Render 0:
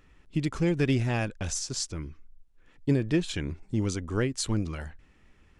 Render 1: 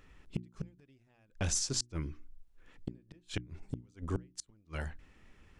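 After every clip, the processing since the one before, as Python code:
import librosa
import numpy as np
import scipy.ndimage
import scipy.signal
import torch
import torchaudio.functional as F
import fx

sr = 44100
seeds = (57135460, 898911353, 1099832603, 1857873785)

y = fx.gate_flip(x, sr, shuts_db=-20.0, range_db=-38)
y = fx.hum_notches(y, sr, base_hz=60, count=6)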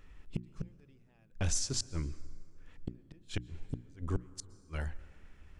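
y = fx.low_shelf(x, sr, hz=62.0, db=10.0)
y = fx.rev_plate(y, sr, seeds[0], rt60_s=2.5, hf_ratio=0.55, predelay_ms=105, drr_db=18.5)
y = y * 10.0 ** (-1.5 / 20.0)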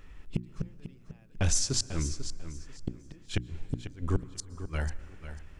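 y = fx.echo_feedback(x, sr, ms=494, feedback_pct=21, wet_db=-11.5)
y = y * 10.0 ** (5.5 / 20.0)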